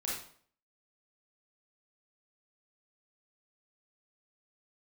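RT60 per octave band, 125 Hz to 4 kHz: 0.55 s, 0.55 s, 0.55 s, 0.55 s, 0.50 s, 0.45 s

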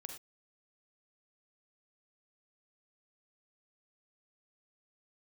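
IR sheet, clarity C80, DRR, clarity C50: 10.0 dB, 4.0 dB, 5.5 dB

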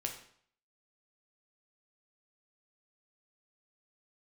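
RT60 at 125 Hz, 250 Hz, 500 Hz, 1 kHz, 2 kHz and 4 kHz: 0.60 s, 0.55 s, 0.60 s, 0.60 s, 0.55 s, 0.55 s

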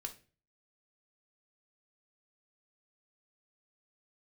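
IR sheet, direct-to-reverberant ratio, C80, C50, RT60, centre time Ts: 3.0 dB, 20.0 dB, 13.5 dB, 0.35 s, 8 ms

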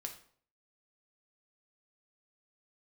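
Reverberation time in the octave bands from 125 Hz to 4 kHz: 0.60 s, 0.55 s, 0.55 s, 0.50 s, 0.45 s, 0.40 s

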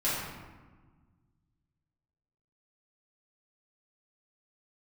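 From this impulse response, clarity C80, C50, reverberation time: 2.0 dB, -1.0 dB, 1.4 s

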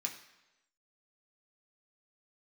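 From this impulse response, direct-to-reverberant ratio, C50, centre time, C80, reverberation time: 0.5 dB, 9.5 dB, 18 ms, 11.5 dB, 1.0 s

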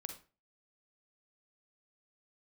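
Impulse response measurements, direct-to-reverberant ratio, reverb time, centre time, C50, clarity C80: 5.5 dB, 0.35 s, 14 ms, 8.0 dB, 14.0 dB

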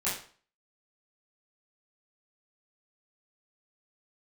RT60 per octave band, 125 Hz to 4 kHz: 0.40 s, 0.45 s, 0.45 s, 0.45 s, 0.40 s, 0.40 s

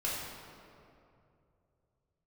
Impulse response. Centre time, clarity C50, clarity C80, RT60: 115 ms, -1.0 dB, 1.0 dB, 2.6 s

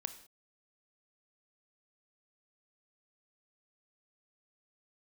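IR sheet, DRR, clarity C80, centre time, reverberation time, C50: 10.0 dB, 15.0 dB, 7 ms, no single decay rate, 12.5 dB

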